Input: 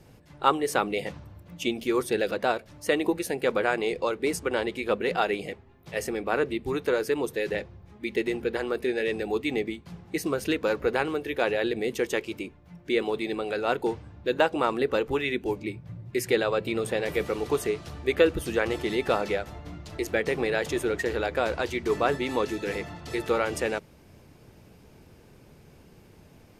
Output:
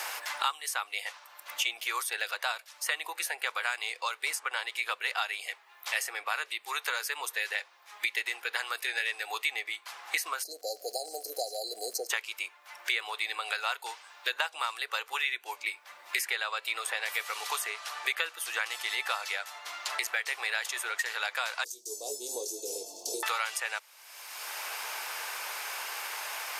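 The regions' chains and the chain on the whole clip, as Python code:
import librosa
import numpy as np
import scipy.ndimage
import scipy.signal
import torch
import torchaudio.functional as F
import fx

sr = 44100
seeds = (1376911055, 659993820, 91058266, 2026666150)

y = fx.brickwall_bandstop(x, sr, low_hz=780.0, high_hz=4000.0, at=(10.42, 12.09), fade=0.02)
y = fx.dmg_crackle(y, sr, seeds[0], per_s=230.0, level_db=-56.0, at=(10.42, 12.09), fade=0.02)
y = fx.chain(y, sr, fx.ellip_bandstop(low_hz=430.0, high_hz=6000.0, order=3, stop_db=80),
    fx.doubler(ms=21.0, db=-7.0), at=(21.64, 23.23))
y = scipy.signal.sosfilt(scipy.signal.butter(4, 930.0, 'highpass', fs=sr, output='sos'), y)
y = fx.high_shelf(y, sr, hz=4600.0, db=7.0)
y = fx.band_squash(y, sr, depth_pct=100)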